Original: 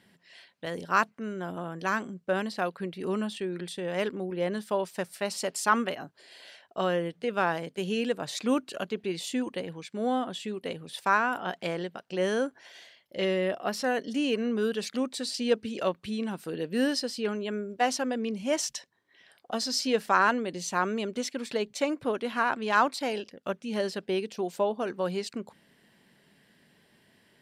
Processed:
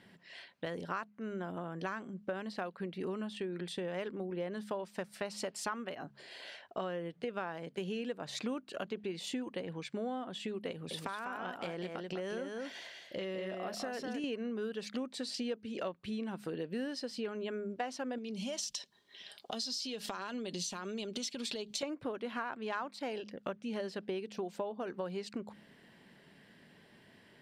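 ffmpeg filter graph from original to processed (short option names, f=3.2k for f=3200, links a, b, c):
-filter_complex "[0:a]asettb=1/sr,asplit=3[a][b][c];[a]atrim=end=10.714[d];[b]atrim=start=10.71:end=14.24,asetpts=PTS-STARTPTS,afade=t=in:d=0.004:c=qsin,afade=t=out:st=3.526:d=0.004:c=qsin,highshelf=f=6.3k:g=5.5,acompressor=threshold=-36dB:ratio=3:attack=3.2:release=140:knee=1:detection=peak,aecho=1:1:199:0.562,atrim=end_sample=155673[e];[c]atrim=start=14.236[f];[d][e]acrossfade=d=0.004:c1=hsin:c2=qsin[g];[g][f]acrossfade=d=0.004:c1=qsin:c2=hsin,asettb=1/sr,asplit=3[h][i][j];[h]atrim=end=18.184[k];[i]atrim=start=18.18:end=21.83,asetpts=PTS-STARTPTS,afade=t=in:d=0.004:c=qsin,afade=t=out:st=3.646:d=0.004:c=qsin,aecho=1:1:4.9:0.35,atrim=end_sample=160965,acompressor=threshold=-36dB:ratio=5:attack=3.2:release=140:knee=1:detection=peak,highshelf=f=2.6k:t=q:w=1.5:g=9.5[l];[j]atrim=start=21.826[m];[k][l]acrossfade=d=0.004:c1=hsin:c2=qsin[n];[n][m]acrossfade=d=0.004:c1=qsin:c2=hsin,highshelf=f=6.1k:g=-11,bandreject=f=69.1:t=h:w=4,bandreject=f=138.2:t=h:w=4,bandreject=f=207.3:t=h:w=4,acompressor=threshold=-39dB:ratio=6,volume=3dB"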